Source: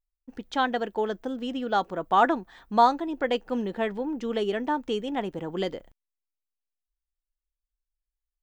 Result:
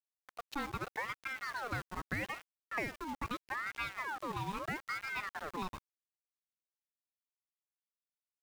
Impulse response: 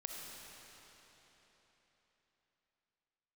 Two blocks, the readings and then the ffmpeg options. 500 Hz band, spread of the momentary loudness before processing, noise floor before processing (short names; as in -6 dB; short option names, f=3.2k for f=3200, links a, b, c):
-20.0 dB, 10 LU, under -85 dBFS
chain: -af "acompressor=threshold=-26dB:ratio=10,aeval=exprs='val(0)*gte(abs(val(0)),0.0168)':c=same,aeval=exprs='val(0)*sin(2*PI*1200*n/s+1200*0.55/0.79*sin(2*PI*0.79*n/s))':c=same,volume=-5.5dB"